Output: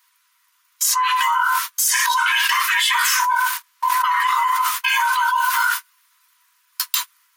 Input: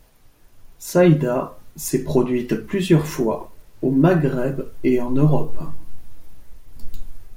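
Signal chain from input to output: every band turned upside down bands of 500 Hz; brick-wall FIR high-pass 940 Hz; gate -52 dBFS, range -35 dB; level flattener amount 100%; trim -5 dB

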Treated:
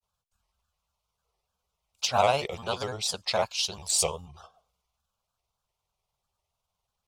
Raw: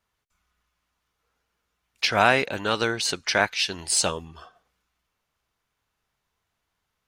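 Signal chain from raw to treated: static phaser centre 730 Hz, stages 4; granulator 100 ms, spray 19 ms, pitch spread up and down by 3 st

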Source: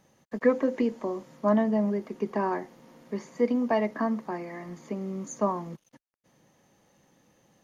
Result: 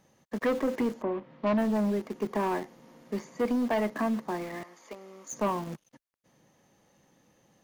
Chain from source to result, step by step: 4.63–5.33 s: high-pass 650 Hz 12 dB/octave; in parallel at -9 dB: bit crusher 6-bit; 1.01–1.57 s: on the sum: low-pass 2.2 kHz -> 4.6 kHz 24 dB/octave; saturation -21 dBFS, distortion -11 dB; trim -1 dB

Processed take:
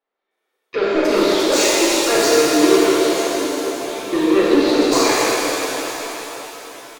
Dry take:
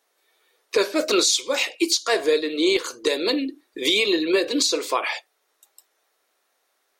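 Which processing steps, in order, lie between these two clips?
tilt shelf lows +3.5 dB; waveshaping leveller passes 3; 2.98–4.13 s: compression, threshold -29 dBFS, peak gain reduction 16 dB; bands offset in time lows, highs 310 ms, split 3.8 kHz; pitch-shifted reverb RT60 4 s, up +7 st, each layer -8 dB, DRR -7 dB; trim -8 dB

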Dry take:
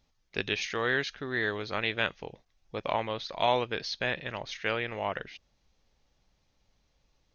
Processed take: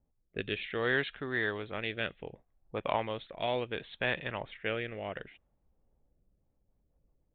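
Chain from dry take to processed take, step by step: level-controlled noise filter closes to 640 Hz, open at -26.5 dBFS; resampled via 8 kHz; rotary cabinet horn 0.65 Hz, later 7 Hz, at 6.11 s

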